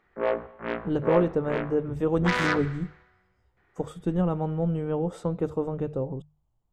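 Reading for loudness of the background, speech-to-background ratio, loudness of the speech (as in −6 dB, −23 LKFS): −30.0 LKFS, 1.5 dB, −28.5 LKFS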